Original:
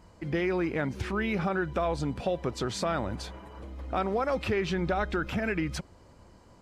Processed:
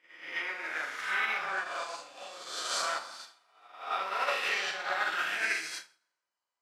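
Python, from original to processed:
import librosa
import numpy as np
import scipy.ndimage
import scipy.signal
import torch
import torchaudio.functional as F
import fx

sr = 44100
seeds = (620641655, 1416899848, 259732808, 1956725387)

y = fx.spec_swells(x, sr, rise_s=1.81)
y = scipy.signal.sosfilt(scipy.signal.butter(2, 1300.0, 'highpass', fs=sr, output='sos'), y)
y = fx.doubler(y, sr, ms=37.0, db=-5.5)
y = fx.rev_plate(y, sr, seeds[0], rt60_s=1.2, hf_ratio=0.7, predelay_ms=0, drr_db=0.0)
y = fx.upward_expand(y, sr, threshold_db=-47.0, expansion=2.5)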